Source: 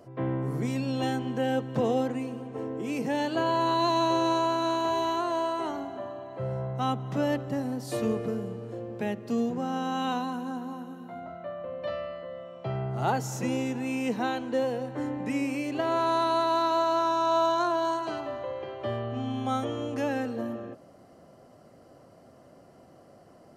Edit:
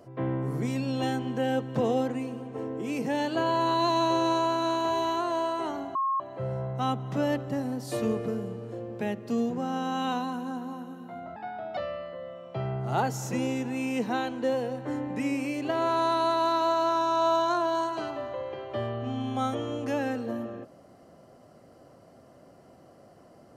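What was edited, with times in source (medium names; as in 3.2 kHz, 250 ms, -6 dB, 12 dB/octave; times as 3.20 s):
5.95–6.20 s: bleep 1.08 kHz -24 dBFS
11.36–11.87 s: speed 124%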